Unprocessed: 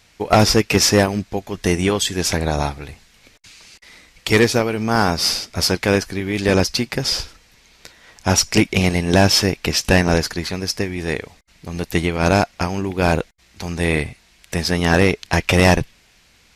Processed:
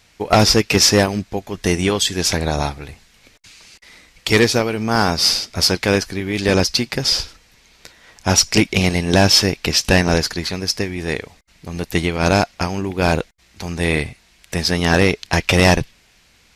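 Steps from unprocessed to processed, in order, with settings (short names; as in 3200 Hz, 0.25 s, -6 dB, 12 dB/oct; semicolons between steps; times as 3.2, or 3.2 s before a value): dynamic EQ 4400 Hz, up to +4 dB, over -34 dBFS, Q 1.1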